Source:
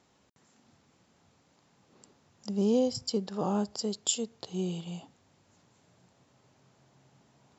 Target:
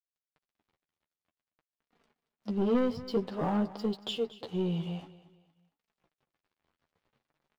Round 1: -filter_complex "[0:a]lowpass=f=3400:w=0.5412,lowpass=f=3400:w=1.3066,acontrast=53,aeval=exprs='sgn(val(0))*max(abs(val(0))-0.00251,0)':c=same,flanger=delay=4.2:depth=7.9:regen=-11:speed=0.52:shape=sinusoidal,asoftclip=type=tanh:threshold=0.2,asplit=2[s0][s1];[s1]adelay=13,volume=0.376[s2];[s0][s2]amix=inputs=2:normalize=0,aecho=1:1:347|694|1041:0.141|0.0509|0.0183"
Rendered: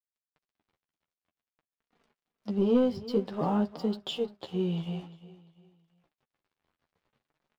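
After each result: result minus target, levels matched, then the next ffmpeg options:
echo 116 ms late; saturation: distortion -10 dB
-filter_complex "[0:a]lowpass=f=3400:w=0.5412,lowpass=f=3400:w=1.3066,acontrast=53,aeval=exprs='sgn(val(0))*max(abs(val(0))-0.00251,0)':c=same,flanger=delay=4.2:depth=7.9:regen=-11:speed=0.52:shape=sinusoidal,asoftclip=type=tanh:threshold=0.2,asplit=2[s0][s1];[s1]adelay=13,volume=0.376[s2];[s0][s2]amix=inputs=2:normalize=0,aecho=1:1:231|462|693:0.141|0.0509|0.0183"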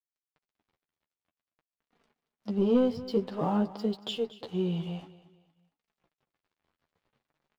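saturation: distortion -10 dB
-filter_complex "[0:a]lowpass=f=3400:w=0.5412,lowpass=f=3400:w=1.3066,acontrast=53,aeval=exprs='sgn(val(0))*max(abs(val(0))-0.00251,0)':c=same,flanger=delay=4.2:depth=7.9:regen=-11:speed=0.52:shape=sinusoidal,asoftclip=type=tanh:threshold=0.0794,asplit=2[s0][s1];[s1]adelay=13,volume=0.376[s2];[s0][s2]amix=inputs=2:normalize=0,aecho=1:1:231|462|693:0.141|0.0509|0.0183"

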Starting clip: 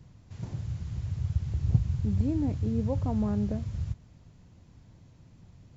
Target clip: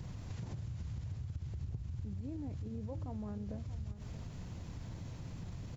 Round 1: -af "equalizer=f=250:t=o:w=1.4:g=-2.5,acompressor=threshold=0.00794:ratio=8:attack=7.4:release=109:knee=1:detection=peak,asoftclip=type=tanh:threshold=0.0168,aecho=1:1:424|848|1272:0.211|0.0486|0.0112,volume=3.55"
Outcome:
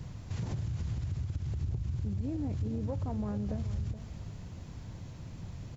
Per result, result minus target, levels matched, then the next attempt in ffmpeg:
compression: peak gain reduction -8.5 dB; echo 208 ms early
-af "equalizer=f=250:t=o:w=1.4:g=-2.5,acompressor=threshold=0.00266:ratio=8:attack=7.4:release=109:knee=1:detection=peak,asoftclip=type=tanh:threshold=0.0168,aecho=1:1:424|848|1272:0.211|0.0486|0.0112,volume=3.55"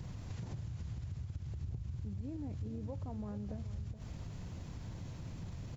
echo 208 ms early
-af "equalizer=f=250:t=o:w=1.4:g=-2.5,acompressor=threshold=0.00266:ratio=8:attack=7.4:release=109:knee=1:detection=peak,asoftclip=type=tanh:threshold=0.0168,aecho=1:1:632|1264|1896:0.211|0.0486|0.0112,volume=3.55"

